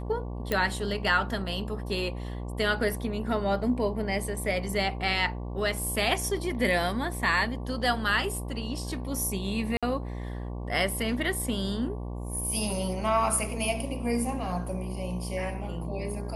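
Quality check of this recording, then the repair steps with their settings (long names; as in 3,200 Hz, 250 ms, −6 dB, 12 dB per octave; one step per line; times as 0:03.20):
mains buzz 60 Hz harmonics 19 −35 dBFS
0:00.52: click −13 dBFS
0:09.77–0:09.83: drop-out 56 ms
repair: click removal
hum removal 60 Hz, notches 19
repair the gap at 0:09.77, 56 ms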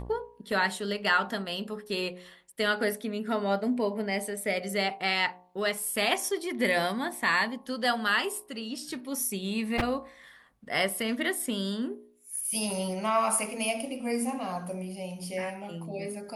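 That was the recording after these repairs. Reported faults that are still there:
none of them is left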